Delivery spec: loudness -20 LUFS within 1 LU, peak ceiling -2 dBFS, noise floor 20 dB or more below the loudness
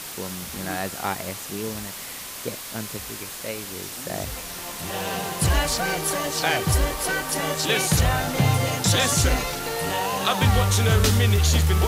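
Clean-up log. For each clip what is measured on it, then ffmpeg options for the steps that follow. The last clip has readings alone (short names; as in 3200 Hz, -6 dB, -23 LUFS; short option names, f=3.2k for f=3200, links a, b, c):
noise floor -36 dBFS; noise floor target -44 dBFS; loudness -23.5 LUFS; peak -9.0 dBFS; loudness target -20.0 LUFS
-> -af "afftdn=nr=8:nf=-36"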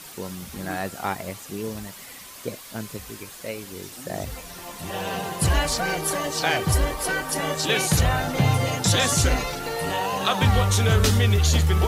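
noise floor -42 dBFS; noise floor target -43 dBFS
-> -af "afftdn=nr=6:nf=-42"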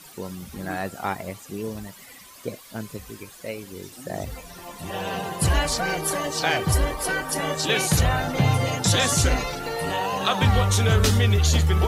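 noise floor -46 dBFS; loudness -23.0 LUFS; peak -9.0 dBFS; loudness target -20.0 LUFS
-> -af "volume=3dB"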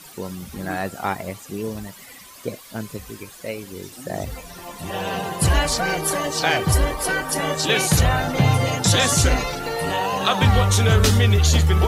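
loudness -20.0 LUFS; peak -6.0 dBFS; noise floor -43 dBFS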